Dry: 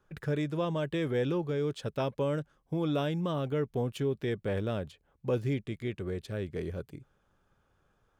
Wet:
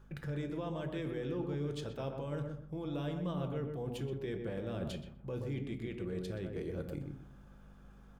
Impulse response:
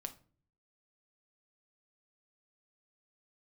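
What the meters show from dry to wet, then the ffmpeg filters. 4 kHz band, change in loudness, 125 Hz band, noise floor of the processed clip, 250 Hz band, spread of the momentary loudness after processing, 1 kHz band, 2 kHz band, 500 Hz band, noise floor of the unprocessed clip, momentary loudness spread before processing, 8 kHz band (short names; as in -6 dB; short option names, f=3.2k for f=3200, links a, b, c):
-7.0 dB, -6.5 dB, -5.5 dB, -56 dBFS, -5.5 dB, 8 LU, -8.0 dB, -8.0 dB, -7.5 dB, -73 dBFS, 7 LU, n/a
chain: -filter_complex "[0:a]alimiter=level_in=2.5dB:limit=-24dB:level=0:latency=1,volume=-2.5dB,areverse,acompressor=threshold=-45dB:ratio=6,areverse,aeval=exprs='val(0)+0.000708*(sin(2*PI*50*n/s)+sin(2*PI*2*50*n/s)/2+sin(2*PI*3*50*n/s)/3+sin(2*PI*4*50*n/s)/4+sin(2*PI*5*50*n/s)/5)':c=same,asplit=2[a][b];[b]adelay=125,lowpass=f=1.1k:p=1,volume=-3dB,asplit=2[c][d];[d]adelay=125,lowpass=f=1.1k:p=1,volume=0.28,asplit=2[e][f];[f]adelay=125,lowpass=f=1.1k:p=1,volume=0.28,asplit=2[g][h];[h]adelay=125,lowpass=f=1.1k:p=1,volume=0.28[i];[a][c][e][g][i]amix=inputs=5:normalize=0[j];[1:a]atrim=start_sample=2205[k];[j][k]afir=irnorm=-1:irlink=0,volume=9.5dB"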